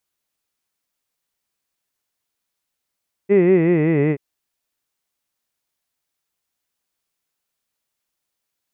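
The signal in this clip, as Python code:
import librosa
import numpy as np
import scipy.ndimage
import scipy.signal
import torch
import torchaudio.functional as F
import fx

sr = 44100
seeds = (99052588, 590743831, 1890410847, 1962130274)

y = fx.vowel(sr, seeds[0], length_s=0.88, word='hid', hz=194.0, glide_st=-5.5, vibrato_hz=5.3, vibrato_st=1.2)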